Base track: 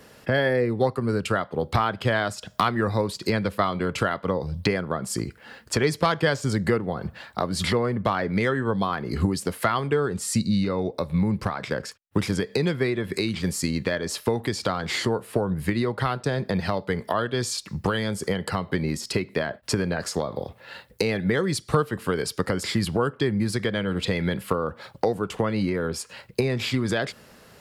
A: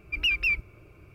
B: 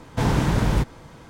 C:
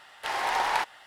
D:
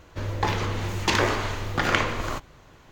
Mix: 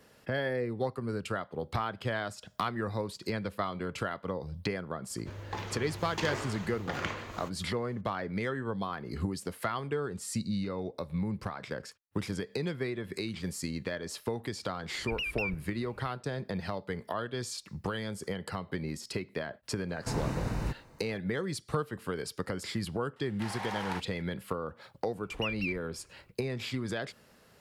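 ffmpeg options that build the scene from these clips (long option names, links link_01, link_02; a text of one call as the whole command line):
ffmpeg -i bed.wav -i cue0.wav -i cue1.wav -i cue2.wav -i cue3.wav -filter_complex "[1:a]asplit=2[link_01][link_02];[0:a]volume=-10dB[link_03];[4:a]highpass=47[link_04];[link_01]acompressor=threshold=-28dB:ratio=6:attack=3.2:release=140:knee=1:detection=peak[link_05];[2:a]asuperstop=centerf=3300:order=4:qfactor=6.5[link_06];[link_04]atrim=end=2.91,asetpts=PTS-STARTPTS,volume=-13dB,afade=type=in:duration=0.004:curve=hsin,afade=type=out:start_time=2.906:duration=0.004:curve=hsin,adelay=5100[link_07];[link_05]atrim=end=1.14,asetpts=PTS-STARTPTS,volume=-4dB,afade=type=in:duration=0.004:curve=hsin,afade=type=out:start_time=1.136:duration=0.004:curve=hsin,adelay=14950[link_08];[link_06]atrim=end=1.29,asetpts=PTS-STARTPTS,volume=-12.5dB,afade=type=in:duration=0.004:curve=hsin,afade=type=out:start_time=1.286:duration=0.004:curve=hsin,adelay=19890[link_09];[3:a]atrim=end=1.06,asetpts=PTS-STARTPTS,volume=-11.5dB,afade=type=in:duration=0.004:curve=hsin,afade=type=out:start_time=1.056:duration=0.004:curve=hsin,adelay=23160[link_10];[link_02]atrim=end=1.14,asetpts=PTS-STARTPTS,volume=-11.5dB,afade=type=in:duration=0.004:curve=hsin,afade=type=out:start_time=1.136:duration=0.004:curve=hsin,adelay=25180[link_11];[link_03][link_07][link_08][link_09][link_10][link_11]amix=inputs=6:normalize=0" out.wav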